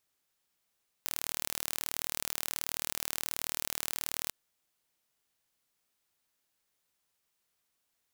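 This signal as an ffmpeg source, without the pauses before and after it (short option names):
-f lavfi -i "aevalsrc='0.473*eq(mod(n,1142),0)':d=3.25:s=44100"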